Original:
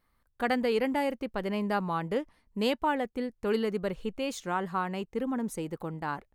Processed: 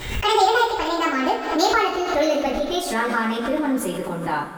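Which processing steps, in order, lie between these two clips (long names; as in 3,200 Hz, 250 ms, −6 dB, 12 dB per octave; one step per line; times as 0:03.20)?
gliding playback speed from 179% → 98%
coupled-rooms reverb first 0.33 s, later 3.8 s, from −20 dB, DRR −9 dB
background raised ahead of every attack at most 60 dB per second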